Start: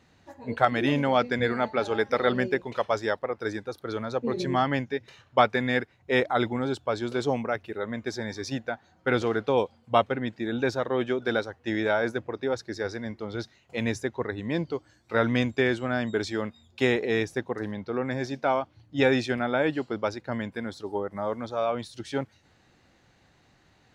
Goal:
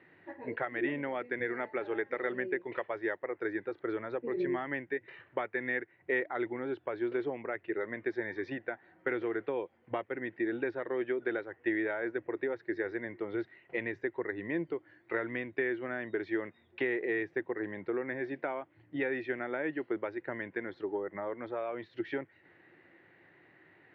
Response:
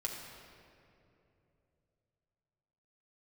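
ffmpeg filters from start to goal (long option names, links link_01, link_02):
-af "acompressor=threshold=-34dB:ratio=4,highpass=frequency=120:width=0.5412,highpass=frequency=120:width=1.3066,equalizer=frequency=130:width_type=q:width=4:gain=-7,equalizer=frequency=220:width_type=q:width=4:gain=-10,equalizer=frequency=350:width_type=q:width=4:gain=9,equalizer=frequency=780:width_type=q:width=4:gain=-3,equalizer=frequency=1200:width_type=q:width=4:gain=-3,equalizer=frequency=1900:width_type=q:width=4:gain=10,lowpass=frequency=2600:width=0.5412,lowpass=frequency=2600:width=1.3066"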